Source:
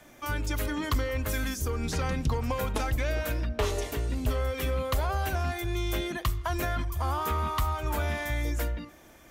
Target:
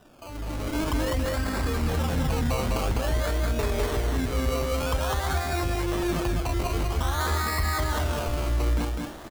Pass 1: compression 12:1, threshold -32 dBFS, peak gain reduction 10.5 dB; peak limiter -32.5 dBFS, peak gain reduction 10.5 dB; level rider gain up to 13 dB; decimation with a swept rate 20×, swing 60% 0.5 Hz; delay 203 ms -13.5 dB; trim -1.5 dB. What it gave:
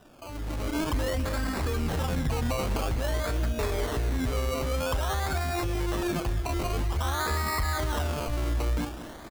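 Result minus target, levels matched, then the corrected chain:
compression: peak gain reduction +10.5 dB; echo-to-direct -11 dB
peak limiter -32.5 dBFS, peak gain reduction 13 dB; level rider gain up to 13 dB; decimation with a swept rate 20×, swing 60% 0.5 Hz; delay 203 ms -2.5 dB; trim -1.5 dB

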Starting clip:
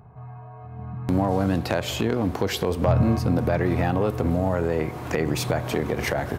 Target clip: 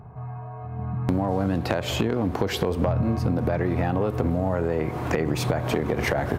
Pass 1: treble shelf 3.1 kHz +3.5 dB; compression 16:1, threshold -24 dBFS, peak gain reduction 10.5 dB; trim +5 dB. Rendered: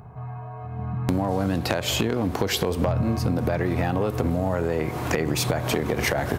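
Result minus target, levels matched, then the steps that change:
8 kHz band +7.5 dB
change: treble shelf 3.1 kHz -7 dB

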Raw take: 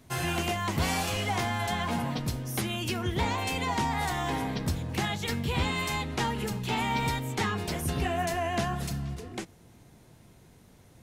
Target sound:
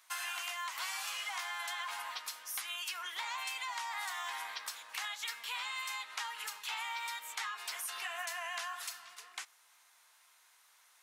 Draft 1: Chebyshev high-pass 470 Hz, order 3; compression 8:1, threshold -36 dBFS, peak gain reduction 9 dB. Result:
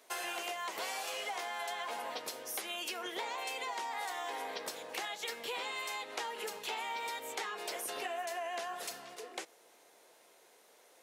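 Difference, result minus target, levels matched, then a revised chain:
500 Hz band +14.5 dB
Chebyshev high-pass 1.1 kHz, order 3; compression 8:1, threshold -36 dBFS, peak gain reduction 7.5 dB

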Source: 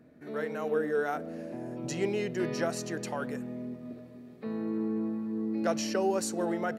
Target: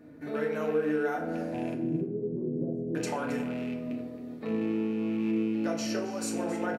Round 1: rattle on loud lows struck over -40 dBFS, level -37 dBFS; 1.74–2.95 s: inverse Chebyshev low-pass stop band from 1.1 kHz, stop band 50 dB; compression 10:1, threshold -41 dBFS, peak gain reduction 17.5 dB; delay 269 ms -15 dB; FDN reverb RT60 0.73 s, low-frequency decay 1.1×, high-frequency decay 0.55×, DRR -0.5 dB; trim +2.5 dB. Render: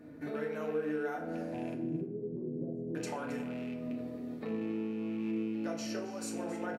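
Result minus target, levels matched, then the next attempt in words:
compression: peak gain reduction +6.5 dB
rattle on loud lows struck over -40 dBFS, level -37 dBFS; 1.74–2.95 s: inverse Chebyshev low-pass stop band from 1.1 kHz, stop band 50 dB; compression 10:1, threshold -34 dBFS, peak gain reduction 11 dB; delay 269 ms -15 dB; FDN reverb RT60 0.73 s, low-frequency decay 1.1×, high-frequency decay 0.55×, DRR -0.5 dB; trim +2.5 dB

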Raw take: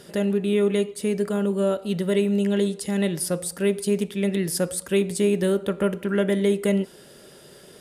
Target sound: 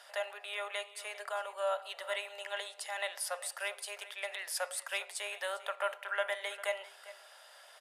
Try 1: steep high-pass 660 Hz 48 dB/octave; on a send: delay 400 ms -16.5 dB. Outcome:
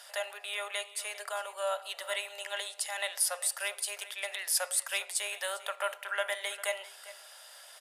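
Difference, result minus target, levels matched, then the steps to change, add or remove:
8 kHz band +5.5 dB
add after steep high-pass: treble shelf 4 kHz -11.5 dB

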